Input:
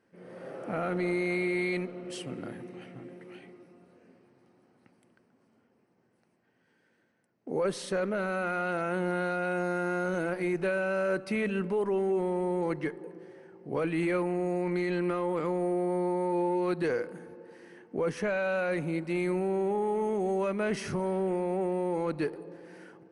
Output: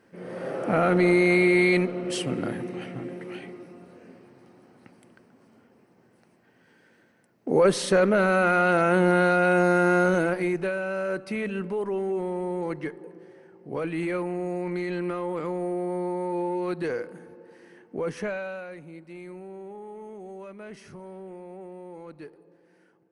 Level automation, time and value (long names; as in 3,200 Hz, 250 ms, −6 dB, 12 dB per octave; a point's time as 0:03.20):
0:10.02 +10 dB
0:10.77 0 dB
0:18.26 0 dB
0:18.77 −12 dB